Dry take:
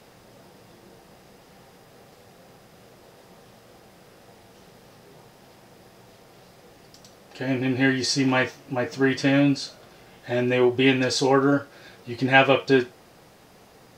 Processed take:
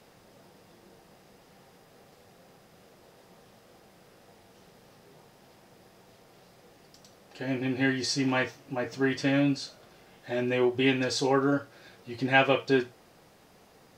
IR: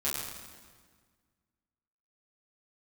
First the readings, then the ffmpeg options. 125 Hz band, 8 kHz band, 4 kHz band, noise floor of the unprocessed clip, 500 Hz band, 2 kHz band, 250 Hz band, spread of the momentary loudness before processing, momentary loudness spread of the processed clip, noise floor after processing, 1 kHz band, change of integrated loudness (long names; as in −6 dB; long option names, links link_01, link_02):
−6.0 dB, −5.5 dB, −5.5 dB, −53 dBFS, −5.5 dB, −5.5 dB, −5.5 dB, 11 LU, 11 LU, −58 dBFS, −5.5 dB, −5.5 dB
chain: -af "bandreject=frequency=60:width_type=h:width=6,bandreject=frequency=120:width_type=h:width=6,volume=-5.5dB"